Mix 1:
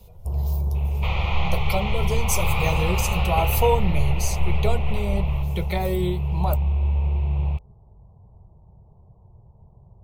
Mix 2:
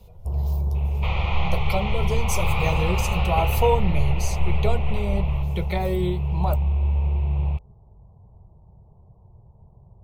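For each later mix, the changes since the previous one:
master: add treble shelf 6.2 kHz -8 dB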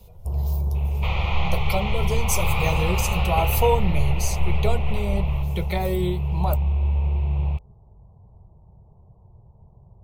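master: add treble shelf 6.2 kHz +8 dB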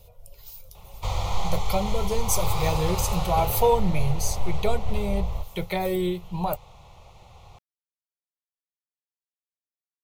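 first sound: muted; second sound: remove resonant low-pass 2.6 kHz, resonance Q 4.9

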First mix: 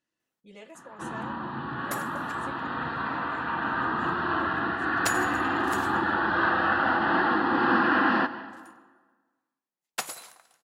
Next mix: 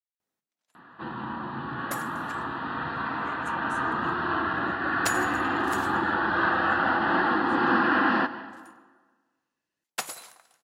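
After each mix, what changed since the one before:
speech: entry +2.70 s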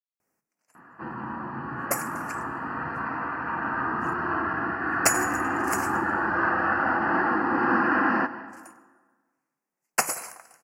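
speech: muted; second sound +9.5 dB; master: add Butterworth band-stop 3.6 kHz, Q 1.4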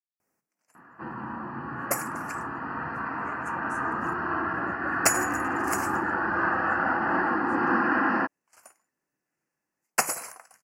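speech: unmuted; reverb: off

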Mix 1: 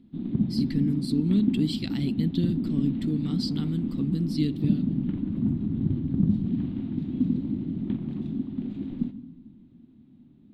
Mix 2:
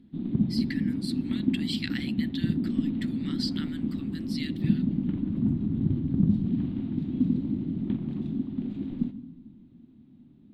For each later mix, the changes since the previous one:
speech: add resonant high-pass 1.7 kHz, resonance Q 4.1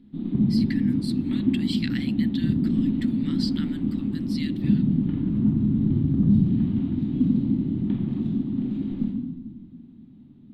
background: send +11.5 dB

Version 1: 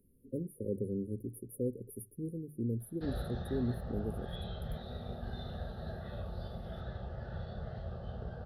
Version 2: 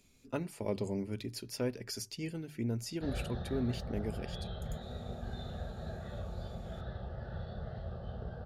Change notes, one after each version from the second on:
speech: remove brick-wall FIR band-stop 560–9400 Hz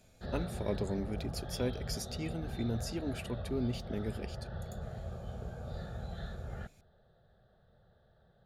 background: entry -2.80 s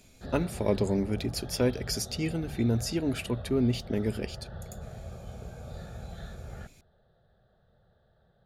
speech +8.5 dB

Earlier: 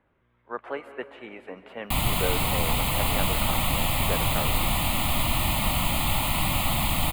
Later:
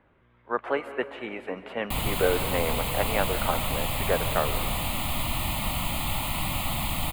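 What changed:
speech +6.0 dB; background -4.0 dB

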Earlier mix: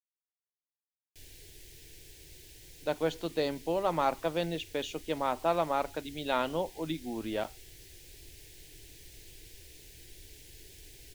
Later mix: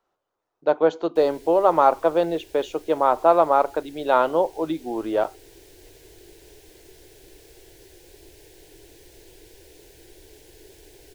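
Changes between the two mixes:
speech: entry -2.20 s; master: add high-order bell 680 Hz +12.5 dB 2.5 oct

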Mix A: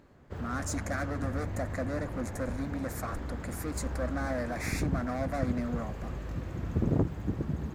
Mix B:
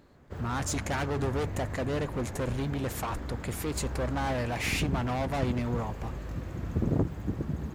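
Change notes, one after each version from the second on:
speech: remove static phaser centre 600 Hz, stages 8; master: add treble shelf 8.4 kHz +4.5 dB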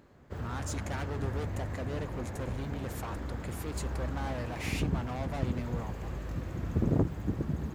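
speech -7.5 dB

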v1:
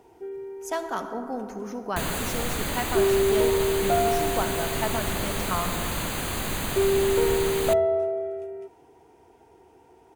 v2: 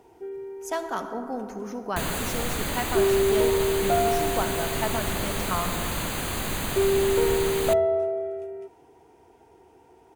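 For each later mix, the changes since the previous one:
no change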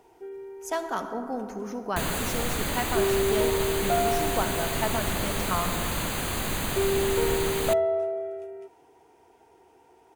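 first sound: add bass shelf 340 Hz -8.5 dB

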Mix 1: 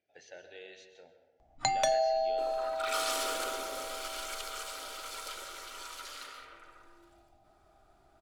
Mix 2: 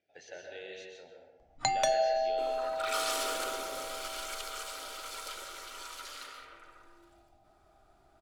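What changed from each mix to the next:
speech: send +10.0 dB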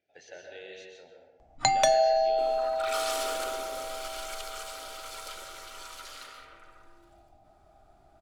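first sound +5.5 dB

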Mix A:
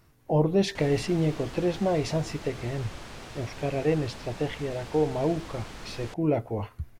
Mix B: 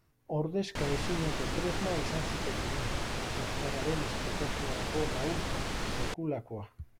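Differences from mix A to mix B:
speech -9.5 dB; background +7.0 dB

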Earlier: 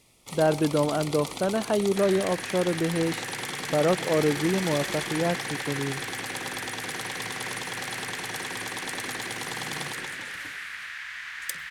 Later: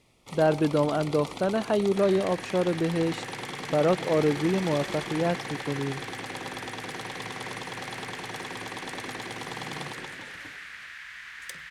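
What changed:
first sound: add low-pass 2.8 kHz 6 dB/octave; second sound -5.0 dB

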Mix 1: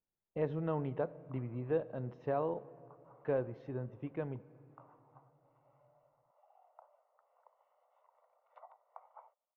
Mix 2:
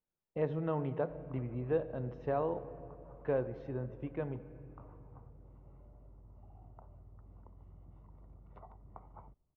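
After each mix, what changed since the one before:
speech: send +7.0 dB; background: remove steep high-pass 520 Hz 72 dB/octave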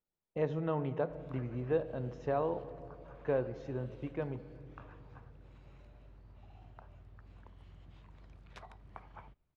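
background: remove Savitzky-Golay filter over 65 samples; master: remove distance through air 220 m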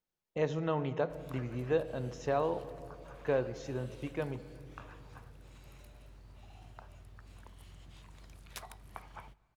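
background: send on; master: remove tape spacing loss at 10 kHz 27 dB

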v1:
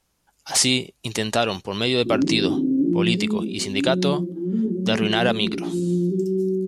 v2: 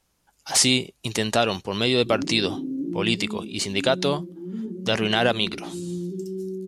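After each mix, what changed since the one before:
background -9.0 dB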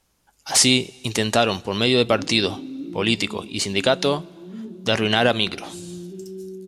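background -7.5 dB; reverb: on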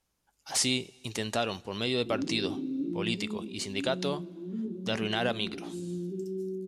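speech -11.5 dB

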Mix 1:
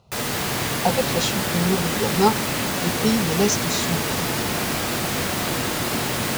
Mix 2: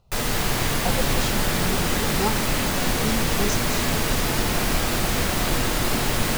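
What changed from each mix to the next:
speech -8.0 dB; master: remove high-pass 100 Hz 12 dB/octave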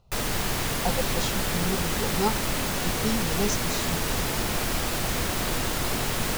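background: send -10.5 dB

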